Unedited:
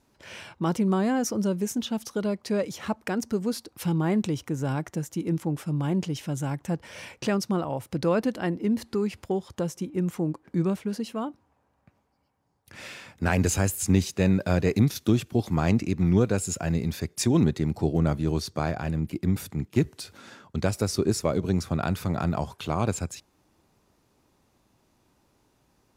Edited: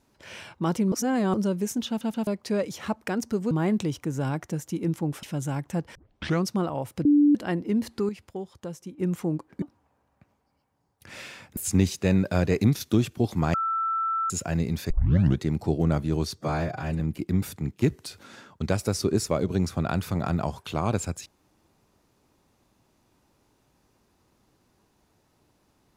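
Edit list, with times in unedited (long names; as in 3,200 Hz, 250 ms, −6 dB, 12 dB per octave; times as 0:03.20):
0:00.92–0:01.34: reverse
0:01.88: stutter in place 0.13 s, 3 plays
0:03.51–0:03.95: remove
0:05.67–0:06.18: remove
0:06.90: tape start 0.50 s
0:08.00–0:08.30: beep over 292 Hz −14.5 dBFS
0:09.04–0:09.93: clip gain −7.5 dB
0:10.57–0:11.28: remove
0:13.23–0:13.72: remove
0:15.69–0:16.45: beep over 1,330 Hz −23.5 dBFS
0:17.05: tape start 0.49 s
0:18.52–0:18.94: time-stretch 1.5×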